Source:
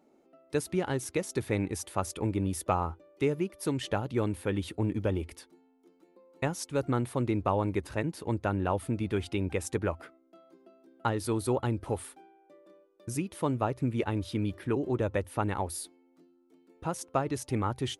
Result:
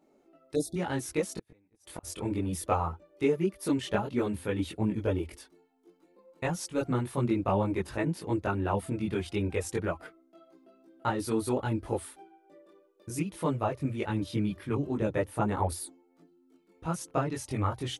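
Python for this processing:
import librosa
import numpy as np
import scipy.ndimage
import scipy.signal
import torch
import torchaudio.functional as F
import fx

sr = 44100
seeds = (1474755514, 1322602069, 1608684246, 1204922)

y = fx.gate_flip(x, sr, shuts_db=-23.0, range_db=-39, at=(1.35, 2.03), fade=0.02)
y = fx.chorus_voices(y, sr, voices=6, hz=0.53, base_ms=21, depth_ms=3.5, mix_pct=55)
y = fx.spec_erase(y, sr, start_s=0.55, length_s=0.21, low_hz=810.0, high_hz=3400.0)
y = y * librosa.db_to_amplitude(3.0)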